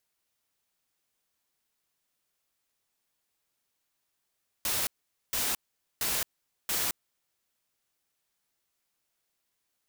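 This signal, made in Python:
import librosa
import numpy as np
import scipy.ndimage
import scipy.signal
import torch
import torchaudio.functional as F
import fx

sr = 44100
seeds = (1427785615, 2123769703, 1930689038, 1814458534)

y = fx.noise_burst(sr, seeds[0], colour='white', on_s=0.22, off_s=0.46, bursts=4, level_db=-29.5)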